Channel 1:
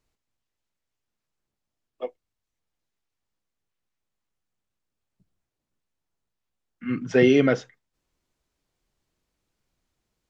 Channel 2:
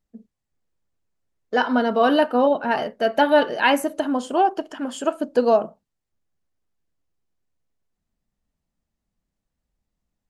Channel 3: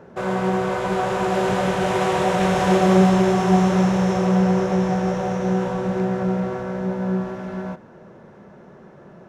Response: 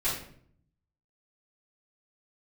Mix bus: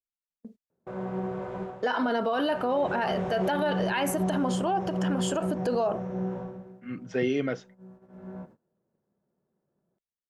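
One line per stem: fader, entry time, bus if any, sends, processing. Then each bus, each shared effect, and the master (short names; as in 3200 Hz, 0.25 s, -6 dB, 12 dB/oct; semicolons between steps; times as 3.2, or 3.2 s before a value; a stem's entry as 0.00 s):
-9.5 dB, 0.00 s, no bus, no send, dry
+2.0 dB, 0.30 s, bus A, no send, dry
-14.5 dB, 0.70 s, bus A, no send, tilt -4.5 dB/oct; auto duck -21 dB, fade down 0.40 s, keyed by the first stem
bus A: 0.0 dB, HPF 320 Hz 6 dB/oct; limiter -19 dBFS, peak gain reduction 14.5 dB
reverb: off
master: gate -50 dBFS, range -23 dB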